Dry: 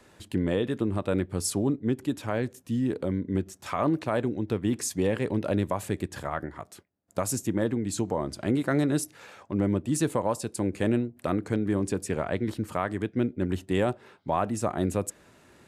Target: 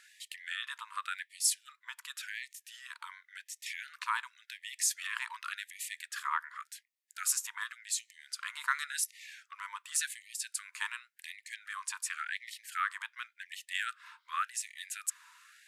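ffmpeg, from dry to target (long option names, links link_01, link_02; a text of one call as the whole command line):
ffmpeg -i in.wav -af "highpass=frequency=420:width_type=q:width=4.9,afftfilt=real='re*gte(b*sr/1024,890*pow(1800/890,0.5+0.5*sin(2*PI*0.9*pts/sr)))':imag='im*gte(b*sr/1024,890*pow(1800/890,0.5+0.5*sin(2*PI*0.9*pts/sr)))':win_size=1024:overlap=0.75,volume=2dB" out.wav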